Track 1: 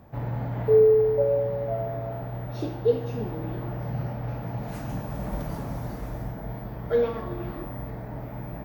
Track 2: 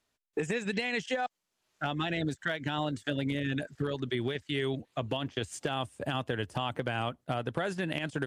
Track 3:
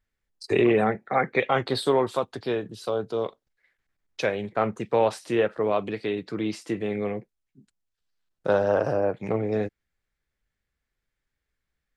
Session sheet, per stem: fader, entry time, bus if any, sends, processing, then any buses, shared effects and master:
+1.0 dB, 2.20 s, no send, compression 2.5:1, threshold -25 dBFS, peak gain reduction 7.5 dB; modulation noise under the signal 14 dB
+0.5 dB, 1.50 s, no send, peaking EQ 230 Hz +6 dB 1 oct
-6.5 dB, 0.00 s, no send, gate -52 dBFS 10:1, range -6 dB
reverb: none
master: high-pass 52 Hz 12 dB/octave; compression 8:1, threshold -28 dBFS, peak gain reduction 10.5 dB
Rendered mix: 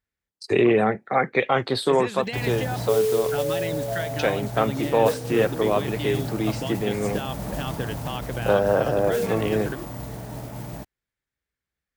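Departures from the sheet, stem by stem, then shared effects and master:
stem 2: missing peaking EQ 230 Hz +6 dB 1 oct; stem 3 -6.5 dB -> +2.0 dB; master: missing compression 8:1, threshold -28 dBFS, peak gain reduction 10.5 dB

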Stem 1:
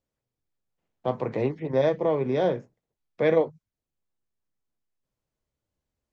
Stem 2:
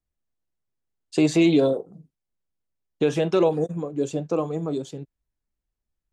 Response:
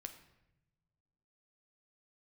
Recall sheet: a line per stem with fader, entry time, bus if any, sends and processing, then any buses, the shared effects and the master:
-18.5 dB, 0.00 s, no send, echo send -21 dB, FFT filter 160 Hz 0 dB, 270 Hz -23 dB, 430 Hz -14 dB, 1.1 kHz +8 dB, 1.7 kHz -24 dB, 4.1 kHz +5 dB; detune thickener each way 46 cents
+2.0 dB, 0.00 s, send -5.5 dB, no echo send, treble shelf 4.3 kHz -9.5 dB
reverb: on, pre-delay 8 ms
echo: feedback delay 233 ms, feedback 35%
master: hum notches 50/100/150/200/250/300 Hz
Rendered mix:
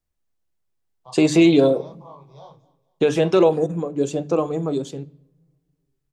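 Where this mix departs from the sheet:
stem 1 -18.5 dB -> -10.0 dB; stem 2: missing treble shelf 4.3 kHz -9.5 dB

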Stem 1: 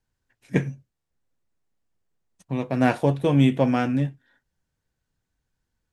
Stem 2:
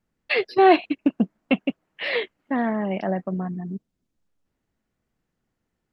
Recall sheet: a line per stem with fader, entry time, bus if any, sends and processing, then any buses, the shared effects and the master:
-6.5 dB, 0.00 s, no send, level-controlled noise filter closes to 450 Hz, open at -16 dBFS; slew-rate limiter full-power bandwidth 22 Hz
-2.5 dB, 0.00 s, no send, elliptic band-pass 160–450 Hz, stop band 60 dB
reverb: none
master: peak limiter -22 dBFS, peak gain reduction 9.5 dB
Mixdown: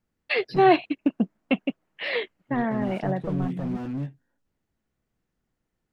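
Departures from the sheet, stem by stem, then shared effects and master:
stem 2: missing elliptic band-pass 160–450 Hz, stop band 60 dB; master: missing peak limiter -22 dBFS, peak gain reduction 9.5 dB

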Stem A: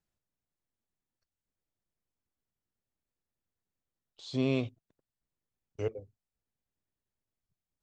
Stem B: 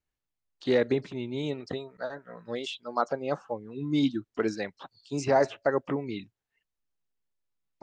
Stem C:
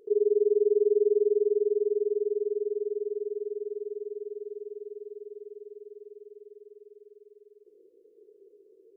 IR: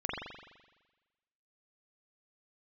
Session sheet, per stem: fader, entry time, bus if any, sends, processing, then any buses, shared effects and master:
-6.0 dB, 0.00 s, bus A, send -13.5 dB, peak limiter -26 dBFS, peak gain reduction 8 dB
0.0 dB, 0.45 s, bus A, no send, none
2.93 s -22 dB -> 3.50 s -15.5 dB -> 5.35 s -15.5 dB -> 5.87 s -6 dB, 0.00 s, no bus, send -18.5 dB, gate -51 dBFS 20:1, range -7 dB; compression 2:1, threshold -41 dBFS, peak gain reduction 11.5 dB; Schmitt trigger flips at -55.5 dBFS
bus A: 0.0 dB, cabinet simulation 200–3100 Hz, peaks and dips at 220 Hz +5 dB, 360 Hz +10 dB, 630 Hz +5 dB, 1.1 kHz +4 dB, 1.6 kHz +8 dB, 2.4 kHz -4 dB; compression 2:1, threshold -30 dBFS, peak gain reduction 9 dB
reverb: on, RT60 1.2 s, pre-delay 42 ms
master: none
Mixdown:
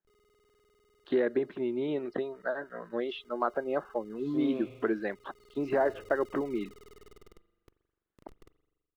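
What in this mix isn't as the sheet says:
stem A: missing peak limiter -26 dBFS, peak gain reduction 8 dB; stem C -22.0 dB -> -29.0 dB

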